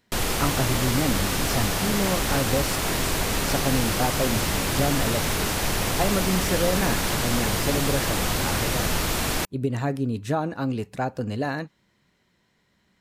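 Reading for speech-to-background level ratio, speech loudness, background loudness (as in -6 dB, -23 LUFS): -4.0 dB, -28.5 LUFS, -24.5 LUFS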